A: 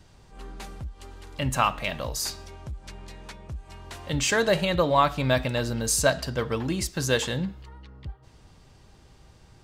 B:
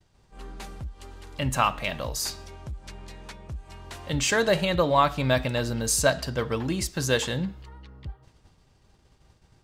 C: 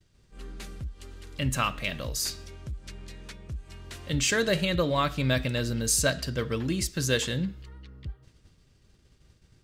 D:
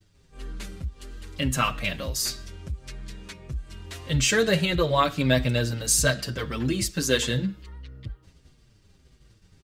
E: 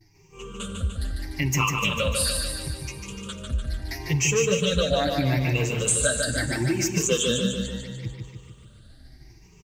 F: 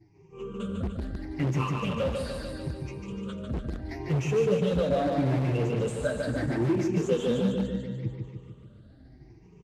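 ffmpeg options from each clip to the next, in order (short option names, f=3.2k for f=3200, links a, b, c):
-af "agate=range=-33dB:threshold=-46dB:ratio=3:detection=peak"
-af "equalizer=f=840:t=o:w=0.89:g=-12"
-filter_complex "[0:a]asplit=2[a][b];[b]adelay=6.6,afreqshift=-1.6[c];[a][c]amix=inputs=2:normalize=1,volume=6dB"
-filter_complex "[0:a]afftfilt=real='re*pow(10,22/40*sin(2*PI*(0.75*log(max(b,1)*sr/1024/100)/log(2)-(0.76)*(pts-256)/sr)))':imag='im*pow(10,22/40*sin(2*PI*(0.75*log(max(b,1)*sr/1024/100)/log(2)-(0.76)*(pts-256)/sr)))':win_size=1024:overlap=0.75,acompressor=threshold=-21dB:ratio=6,asplit=2[a][b];[b]aecho=0:1:148|296|444|592|740|888|1036|1184:0.596|0.34|0.194|0.11|0.0629|0.0358|0.0204|0.0116[c];[a][c]amix=inputs=2:normalize=0"
-filter_complex "[0:a]asplit=2[a][b];[b]aeval=exprs='(mod(11.9*val(0)+1,2)-1)/11.9':c=same,volume=-5dB[c];[a][c]amix=inputs=2:normalize=0,bandpass=f=290:t=q:w=0.58:csg=0" -ar 32000 -c:a libvorbis -b:a 48k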